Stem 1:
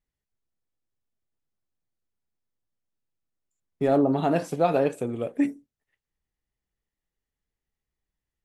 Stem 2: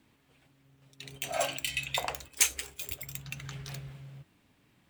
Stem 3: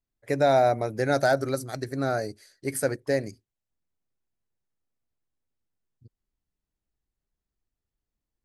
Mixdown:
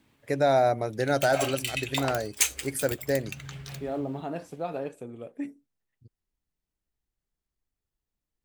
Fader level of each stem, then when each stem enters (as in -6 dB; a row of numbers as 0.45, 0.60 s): -11.0, +1.0, -1.5 dB; 0.00, 0.00, 0.00 s